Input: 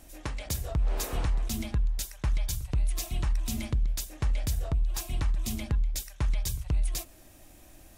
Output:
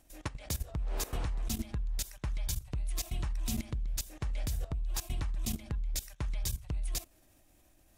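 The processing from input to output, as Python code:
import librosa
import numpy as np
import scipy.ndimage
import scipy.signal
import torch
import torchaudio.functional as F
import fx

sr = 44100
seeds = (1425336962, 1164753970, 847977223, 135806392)

y = fx.level_steps(x, sr, step_db=16)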